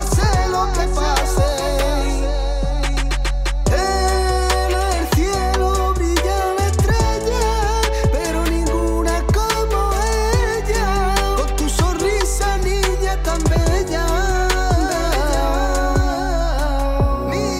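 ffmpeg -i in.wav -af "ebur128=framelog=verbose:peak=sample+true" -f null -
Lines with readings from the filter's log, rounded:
Integrated loudness:
  I:         -18.6 LUFS
  Threshold: -28.6 LUFS
Loudness range:
  LRA:         1.3 LU
  Threshold: -38.6 LUFS
  LRA low:   -19.4 LUFS
  LRA high:  -18.0 LUFS
Sample peak:
  Peak:       -2.1 dBFS
True peak:
  Peak:       -1.9 dBFS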